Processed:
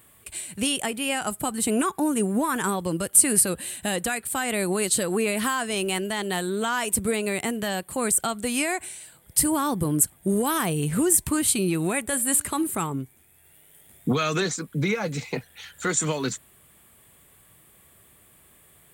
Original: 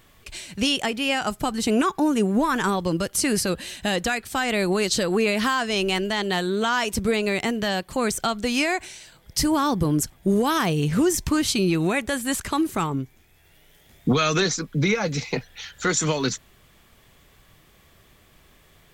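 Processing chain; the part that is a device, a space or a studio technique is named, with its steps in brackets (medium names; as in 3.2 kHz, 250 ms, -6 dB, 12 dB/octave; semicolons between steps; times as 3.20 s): budget condenser microphone (high-pass 67 Hz; resonant high shelf 7.2 kHz +8.5 dB, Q 3); 12.05–12.64 s: de-hum 292 Hz, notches 24; trim -3 dB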